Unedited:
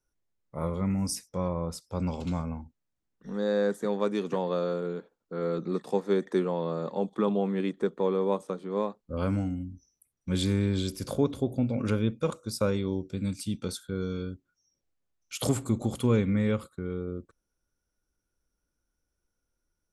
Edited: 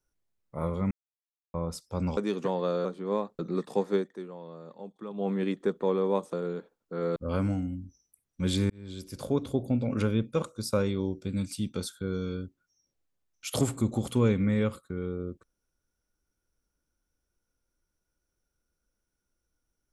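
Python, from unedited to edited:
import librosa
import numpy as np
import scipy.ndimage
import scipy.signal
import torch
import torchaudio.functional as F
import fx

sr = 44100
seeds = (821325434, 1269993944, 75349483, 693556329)

y = fx.edit(x, sr, fx.silence(start_s=0.91, length_s=0.63),
    fx.cut(start_s=2.17, length_s=1.88),
    fx.swap(start_s=4.73, length_s=0.83, other_s=8.5, other_length_s=0.54),
    fx.fade_down_up(start_s=6.11, length_s=1.35, db=-13.5, fade_s=0.15),
    fx.fade_in_span(start_s=10.58, length_s=0.82), tone=tone)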